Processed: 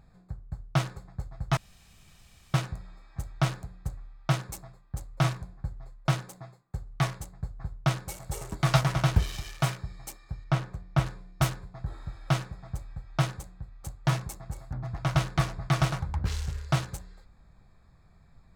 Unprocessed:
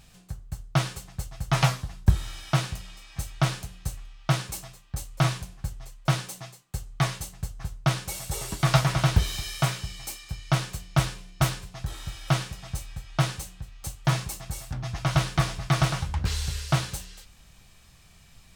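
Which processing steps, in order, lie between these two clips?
local Wiener filter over 15 samples; 1.57–2.54 s: room tone; 10.44–11.06 s: treble shelf 3.8 kHz -10.5 dB; trim -2 dB

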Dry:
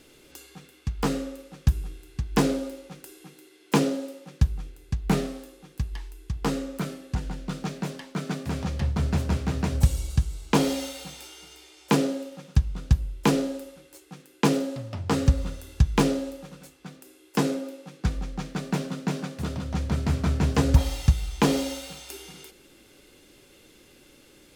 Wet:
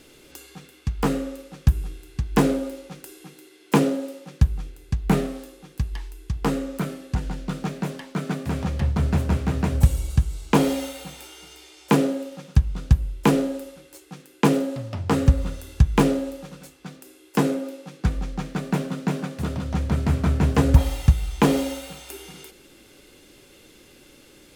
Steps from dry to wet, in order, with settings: dynamic bell 5.1 kHz, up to -7 dB, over -50 dBFS, Q 0.98; trim +3.5 dB

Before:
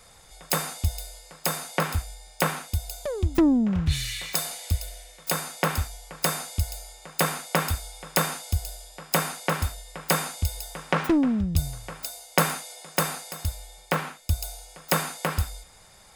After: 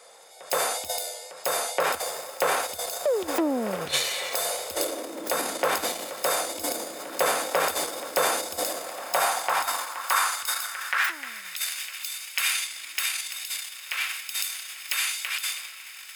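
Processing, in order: in parallel at +0.5 dB: peak limiter -16.5 dBFS, peak gain reduction 11 dB; on the sum: wow and flutter 27 cents; on a send: echo that smears into a reverb 1840 ms, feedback 66%, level -12 dB; on the sum: transient shaper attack -2 dB, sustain +11 dB; high-pass sweep 510 Hz -> 2.5 kHz, 8.61–11.83 s; 2.99–3.86 s: three bands compressed up and down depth 40%; trim -6 dB

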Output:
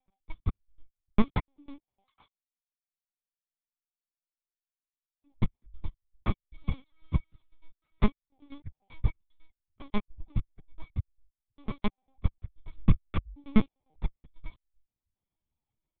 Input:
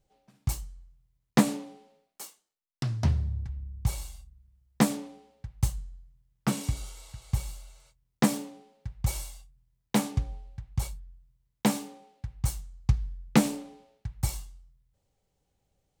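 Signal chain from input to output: slices played last to first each 99 ms, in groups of 3; reverb removal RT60 0.69 s; comb 0.9 ms, depth 86%; LPC vocoder at 8 kHz pitch kept; spectral freeze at 2.41 s, 2.82 s; upward expansion 1.5:1, over -40 dBFS

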